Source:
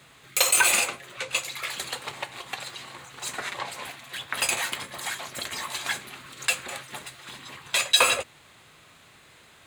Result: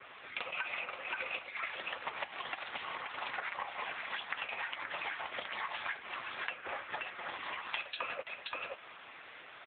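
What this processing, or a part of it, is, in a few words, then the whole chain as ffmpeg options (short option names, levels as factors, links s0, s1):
voicemail: -filter_complex "[0:a]asplit=3[s0][s1][s2];[s0]afade=t=out:st=6.3:d=0.02[s3];[s1]aemphasis=mode=reproduction:type=75fm,afade=t=in:st=6.3:d=0.02,afade=t=out:st=7.35:d=0.02[s4];[s2]afade=t=in:st=7.35:d=0.02[s5];[s3][s4][s5]amix=inputs=3:normalize=0,aecho=1:1:526:0.266,adynamicequalizer=threshold=0.00794:dfrequency=3400:dqfactor=3.7:tfrequency=3400:tqfactor=3.7:attack=5:release=100:ratio=0.375:range=2.5:mode=cutabove:tftype=bell,highpass=420,lowpass=3300,acompressor=threshold=0.01:ratio=8,volume=2.11" -ar 8000 -c:a libopencore_amrnb -b:a 7950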